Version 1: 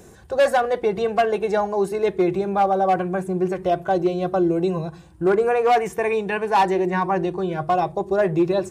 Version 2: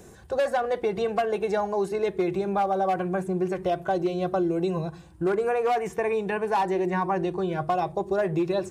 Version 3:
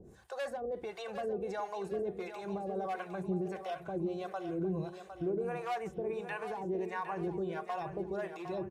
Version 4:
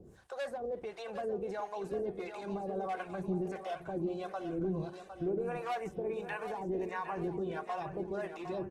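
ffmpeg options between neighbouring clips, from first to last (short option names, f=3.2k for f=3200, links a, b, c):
-filter_complex "[0:a]acrossover=split=1500|7500[a][b][c];[a]acompressor=threshold=-20dB:ratio=4[d];[b]acompressor=threshold=-36dB:ratio=4[e];[c]acompressor=threshold=-53dB:ratio=4[f];[d][e][f]amix=inputs=3:normalize=0,volume=-2dB"
-filter_complex "[0:a]alimiter=limit=-21.5dB:level=0:latency=1:release=33,acrossover=split=600[a][b];[a]aeval=exprs='val(0)*(1-1/2+1/2*cos(2*PI*1.5*n/s))':c=same[c];[b]aeval=exprs='val(0)*(1-1/2-1/2*cos(2*PI*1.5*n/s))':c=same[d];[c][d]amix=inputs=2:normalize=0,asplit=2[e][f];[f]aecho=0:1:758|1516|2274|3032|3790:0.335|0.144|0.0619|0.0266|0.0115[g];[e][g]amix=inputs=2:normalize=0,volume=-4dB"
-ar 48000 -c:a libopus -b:a 16k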